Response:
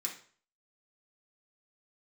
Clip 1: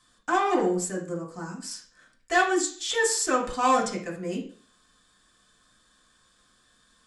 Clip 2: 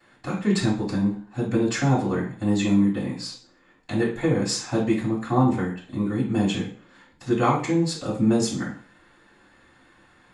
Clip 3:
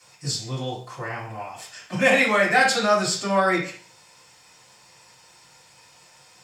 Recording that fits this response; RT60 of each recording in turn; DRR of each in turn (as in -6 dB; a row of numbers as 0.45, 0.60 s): 1; 0.45, 0.45, 0.45 s; -2.5, -21.0, -11.5 dB